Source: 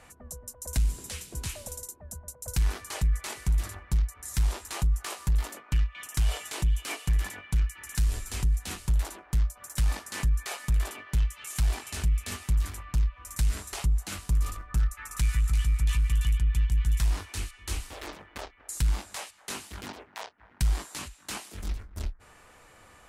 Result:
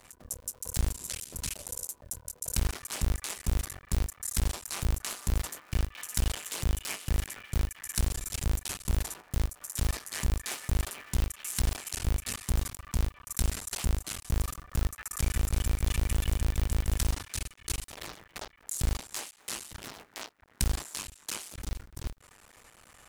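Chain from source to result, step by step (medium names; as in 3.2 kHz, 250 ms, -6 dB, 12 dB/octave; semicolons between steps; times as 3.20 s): cycle switcher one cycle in 2, muted; treble shelf 3.5 kHz +8.5 dB; modulation noise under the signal 33 dB; trim -1.5 dB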